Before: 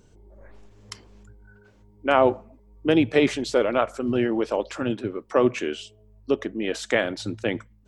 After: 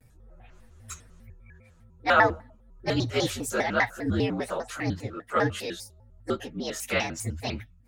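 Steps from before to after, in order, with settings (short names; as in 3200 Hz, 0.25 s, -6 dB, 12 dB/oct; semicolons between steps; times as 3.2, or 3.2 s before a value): inharmonic rescaling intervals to 116%; thirty-one-band EQ 100 Hz +8 dB, 315 Hz -11 dB, 500 Hz -6 dB, 1000 Hz -4 dB, 1600 Hz +11 dB, 8000 Hz +11 dB; shaped vibrato square 5 Hz, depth 250 cents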